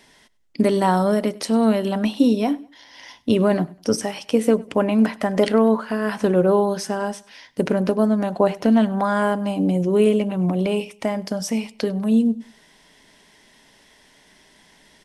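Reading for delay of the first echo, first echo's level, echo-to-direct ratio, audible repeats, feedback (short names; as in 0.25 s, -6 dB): 99 ms, -22.5 dB, -22.0 dB, 2, 34%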